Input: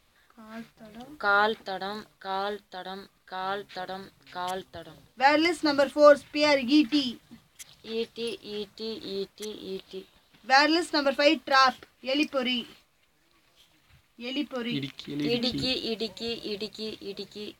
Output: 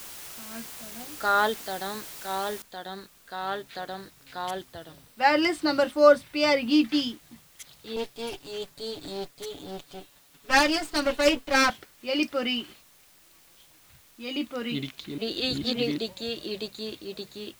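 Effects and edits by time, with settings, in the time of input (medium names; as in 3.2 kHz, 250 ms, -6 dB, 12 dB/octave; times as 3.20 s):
2.62 s: noise floor step -42 dB -58 dB
4.72–6.72 s: band-stop 6.8 kHz
7.96–11.70 s: comb filter that takes the minimum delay 7 ms
15.18–15.98 s: reverse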